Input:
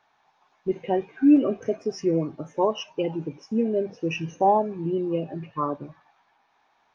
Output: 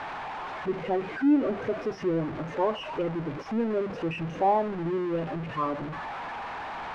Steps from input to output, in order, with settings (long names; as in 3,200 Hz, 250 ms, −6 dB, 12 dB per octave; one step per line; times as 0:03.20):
converter with a step at zero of −24 dBFS
low-pass filter 2,200 Hz 12 dB per octave
parametric band 1,200 Hz +2.5 dB 2.4 octaves
level −7 dB